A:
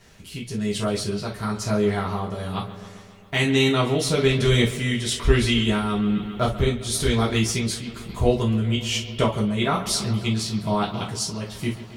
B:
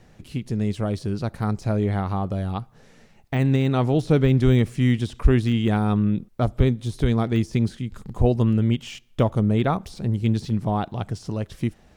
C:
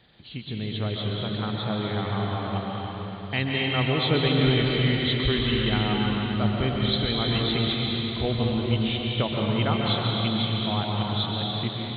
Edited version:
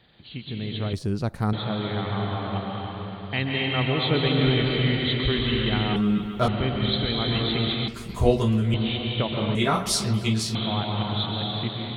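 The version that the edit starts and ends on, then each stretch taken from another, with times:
C
0:00.93–0:01.53: punch in from B
0:05.96–0:06.48: punch in from A
0:07.88–0:08.74: punch in from A
0:09.55–0:10.55: punch in from A

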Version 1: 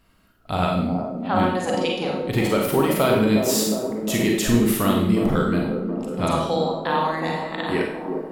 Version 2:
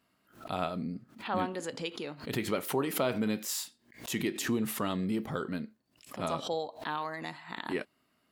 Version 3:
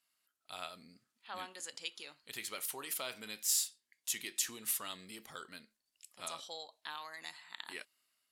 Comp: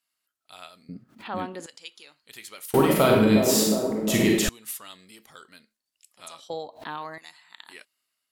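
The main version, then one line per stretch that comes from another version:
3
0:00.89–0:01.66: punch in from 2
0:02.74–0:04.49: punch in from 1
0:06.50–0:07.18: punch in from 2

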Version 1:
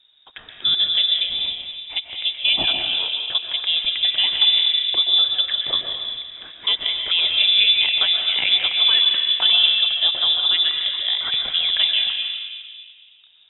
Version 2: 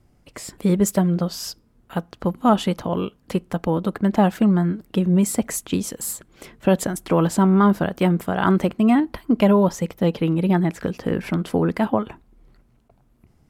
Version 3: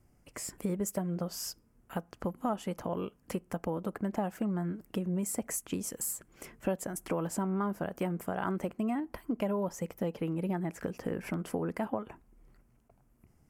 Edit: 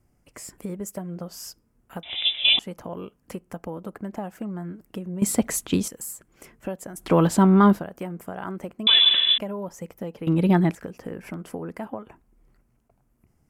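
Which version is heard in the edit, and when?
3
0:02.03–0:02.59: punch in from 1
0:05.22–0:05.88: punch in from 2
0:07.02–0:07.78: punch in from 2, crossfade 0.10 s
0:08.87–0:09.38: punch in from 1
0:10.27–0:10.75: punch in from 2

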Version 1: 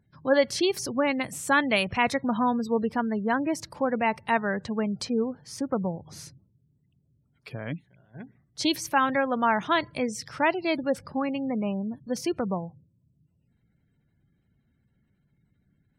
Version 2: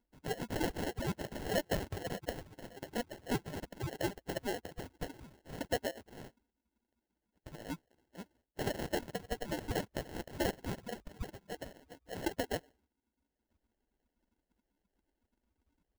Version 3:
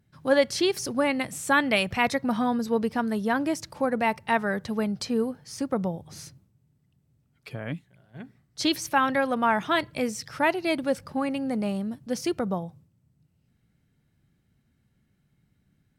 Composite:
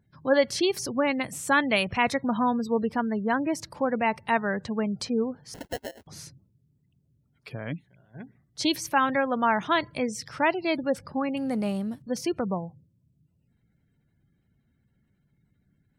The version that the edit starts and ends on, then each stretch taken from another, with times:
1
0:05.54–0:06.07: punch in from 2
0:11.37–0:12.02: punch in from 3

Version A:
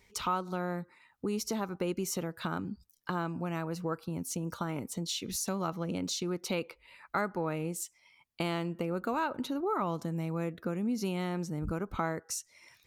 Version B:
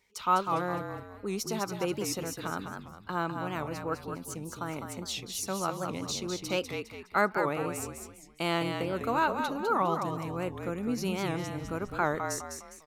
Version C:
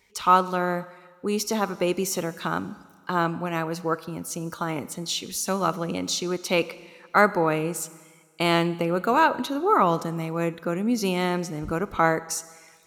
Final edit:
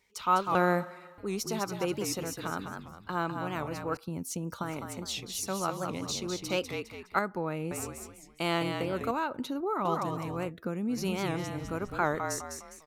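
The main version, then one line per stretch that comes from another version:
B
0:00.55–0:01.18: punch in from C
0:03.97–0:04.63: punch in from A
0:07.19–0:07.71: punch in from A
0:09.11–0:09.85: punch in from A
0:10.48–0:10.93: punch in from A, crossfade 0.10 s

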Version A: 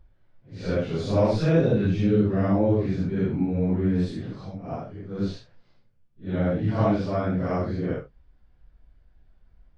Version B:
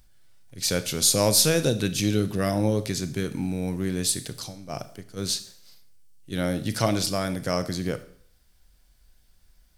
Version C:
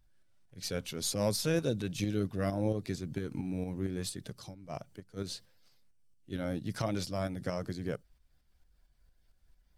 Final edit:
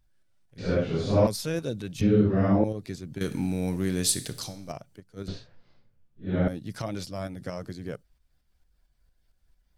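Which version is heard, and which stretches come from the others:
C
0:00.58–0:01.27: punch in from A
0:02.01–0:02.64: punch in from A
0:03.21–0:04.72: punch in from B
0:05.28–0:06.48: punch in from A

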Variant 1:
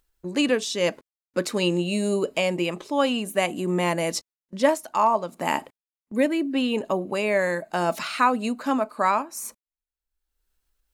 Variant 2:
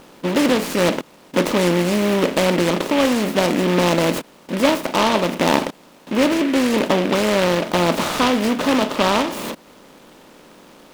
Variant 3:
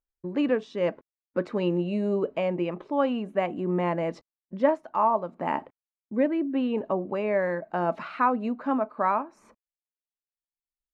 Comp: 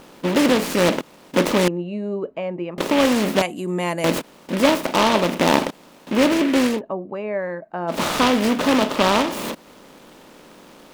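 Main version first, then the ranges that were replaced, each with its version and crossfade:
2
0:01.68–0:02.78: punch in from 3
0:03.42–0:04.04: punch in from 1
0:06.73–0:07.95: punch in from 3, crossfade 0.16 s

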